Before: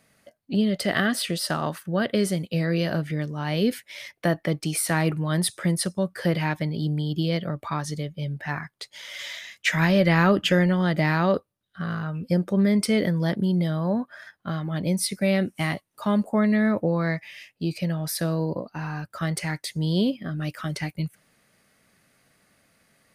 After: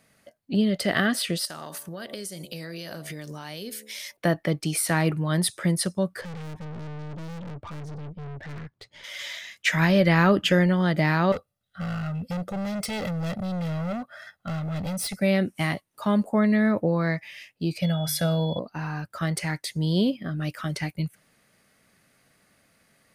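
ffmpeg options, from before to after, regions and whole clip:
ffmpeg -i in.wav -filter_complex "[0:a]asettb=1/sr,asplit=3[link_01][link_02][link_03];[link_01]atrim=end=1.454[link_04];[link_02]atrim=start=1.45:end=4.17,asetpts=PTS-STARTPTS,afade=type=in:duration=0.004:curve=qsin,afade=type=out:start_time=2.716:duration=0.004:curve=qsin,bass=frequency=250:gain=-6,treble=frequency=4000:gain=14,bandreject=frequency=72.32:width_type=h:width=4,bandreject=frequency=144.64:width_type=h:width=4,bandreject=frequency=216.96:width_type=h:width=4,bandreject=frequency=289.28:width_type=h:width=4,bandreject=frequency=361.6:width_type=h:width=4,bandreject=frequency=433.92:width_type=h:width=4,bandreject=frequency=506.24:width_type=h:width=4,bandreject=frequency=578.56:width_type=h:width=4,bandreject=frequency=650.88:width_type=h:width=4,bandreject=frequency=723.2:width_type=h:width=4,bandreject=frequency=795.52:width_type=h:width=4,bandreject=frequency=867.84:width_type=h:width=4,bandreject=frequency=940.16:width_type=h:width=4,bandreject=frequency=1012.48:width_type=h:width=4,bandreject=frequency=1084.8:width_type=h:width=4,bandreject=frequency=1157.12:width_type=h:width=4,acompressor=threshold=-32dB:ratio=10:attack=3.2:release=140:knee=1:detection=peak[link_05];[link_03]atrim=start=4.166[link_06];[link_04][link_05]acrossfade=duration=0.004:curve1=hsin:curve2=qsin[link_07];[link_07][link_06]acrossfade=duration=0.004:curve1=qsin:curve2=hsin,asettb=1/sr,asplit=3[link_08][link_09][link_10];[link_08]atrim=end=6.214[link_11];[link_09]atrim=start=6.21:end=9.04,asetpts=PTS-STARTPTS,afade=type=in:duration=0.004:curve=qsin,afade=type=out:start_time=2.826:duration=0.004:curve=qsin,highpass=46,aemphasis=mode=reproduction:type=riaa,aeval=exprs='(tanh(63.1*val(0)+0.4)-tanh(0.4))/63.1':channel_layout=same[link_12];[link_10]atrim=start=9.036[link_13];[link_11][link_12]acrossfade=duration=0.004:curve1=hsin:curve2=qsin[link_14];[link_14][link_13]acrossfade=duration=0.004:curve1=qsin:curve2=hsin,asettb=1/sr,asplit=3[link_15][link_16][link_17];[link_15]atrim=end=11.324[link_18];[link_16]atrim=start=11.32:end=15.21,asetpts=PTS-STARTPTS,afade=type=in:duration=0.004:curve=qsin,afade=type=out:start_time=3.886:duration=0.004:curve=qsin,volume=28.5dB,asoftclip=hard,volume=-28.5dB,aecho=1:1:1.5:0.59,atrim=end_sample=171549[link_19];[link_17]atrim=start=15.206[link_20];[link_18][link_19]acrossfade=duration=0.004:curve1=hsin:curve2=qsin[link_21];[link_21][link_20]acrossfade=duration=0.004:curve1=qsin:curve2=hsin,asettb=1/sr,asplit=3[link_22][link_23][link_24];[link_22]atrim=end=17.824[link_25];[link_23]atrim=start=17.82:end=18.59,asetpts=PTS-STARTPTS,afade=type=in:duration=0.004:curve=qsin,afade=type=out:start_time=0.766:duration=0.004:curve=qsin,bandreject=frequency=50:width_type=h:width=6,bandreject=frequency=100:width_type=h:width=6,bandreject=frequency=150:width_type=h:width=6,aecho=1:1:1.4:0.72,atrim=end_sample=33957,aeval=exprs='val(0)+0.0112*sin(2*PI*3400*n/s)':channel_layout=same[link_26];[link_24]atrim=start=18.586[link_27];[link_25][link_26]acrossfade=duration=0.004:curve1=hsin:curve2=qsin[link_28];[link_28][link_27]acrossfade=duration=0.004:curve1=qsin:curve2=hsin" out.wav

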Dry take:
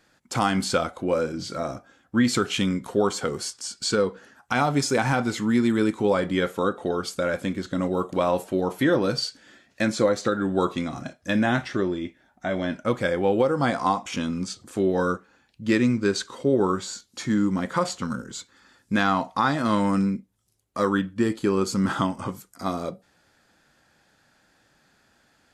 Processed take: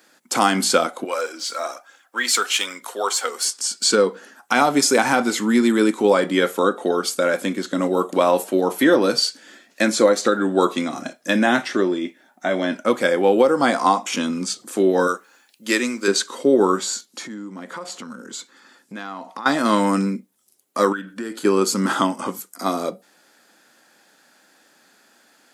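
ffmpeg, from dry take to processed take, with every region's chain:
ffmpeg -i in.wav -filter_complex "[0:a]asettb=1/sr,asplit=3[link_01][link_02][link_03];[link_01]atrim=end=1.044[link_04];[link_02]atrim=start=1.04:end=3.45,asetpts=PTS-STARTPTS,afade=type=in:duration=0.004:curve=qsin,afade=type=out:start_time=2.406:duration=0.004:curve=qsin,highpass=790,aphaser=in_gain=1:out_gain=1:delay=4.5:decay=0.38:speed=1.1:type=triangular[link_05];[link_03]atrim=start=3.446[link_06];[link_04][link_05]acrossfade=duration=0.004:curve1=hsin:curve2=qsin[link_07];[link_07][link_06]acrossfade=duration=0.004:curve1=qsin:curve2=hsin,asettb=1/sr,asplit=3[link_08][link_09][link_10];[link_08]atrim=end=15.074[link_11];[link_09]atrim=start=15.07:end=16.08,asetpts=PTS-STARTPTS,afade=type=in:duration=0.004:curve=qsin,afade=type=out:start_time=1.006:duration=0.004:curve=qsin,highpass=frequency=610:poles=1,highshelf=frequency=7900:gain=10[link_12];[link_10]atrim=start=16.076[link_13];[link_11][link_12]acrossfade=duration=0.004:curve1=hsin:curve2=qsin[link_14];[link_14][link_13]acrossfade=duration=0.004:curve1=qsin:curve2=hsin,asettb=1/sr,asplit=3[link_15][link_16][link_17];[link_15]atrim=end=17.054[link_18];[link_16]atrim=start=17.05:end=19.46,asetpts=PTS-STARTPTS,afade=type=in:duration=0.004:curve=qsin,afade=type=out:start_time=2.406:duration=0.004:curve=qsin,highshelf=frequency=5300:gain=-6,acompressor=threshold=-37dB:ratio=4:attack=3.2:release=140:knee=1:detection=peak[link_19];[link_17]atrim=start=19.456[link_20];[link_18][link_19]acrossfade=duration=0.004:curve1=hsin:curve2=qsin[link_21];[link_21][link_20]acrossfade=duration=0.004:curve1=qsin:curve2=hsin,asettb=1/sr,asplit=3[link_22][link_23][link_24];[link_22]atrim=end=20.924[link_25];[link_23]atrim=start=20.92:end=21.45,asetpts=PTS-STARTPTS,afade=type=in:duration=0.004:curve=qsin,afade=type=out:start_time=0.526:duration=0.004:curve=qsin,equalizer=frequency=1500:width=6.3:gain=13.5,acompressor=threshold=-32dB:ratio=4:attack=3.2:release=140:knee=1:detection=peak[link_26];[link_24]atrim=start=21.446[link_27];[link_25][link_26]acrossfade=duration=0.004:curve1=hsin:curve2=qsin[link_28];[link_28][link_27]acrossfade=duration=0.004:curve1=qsin:curve2=hsin,highpass=frequency=220:width=0.5412,highpass=frequency=220:width=1.3066,highshelf=frequency=8900:gain=11.5,volume=6dB" out.wav

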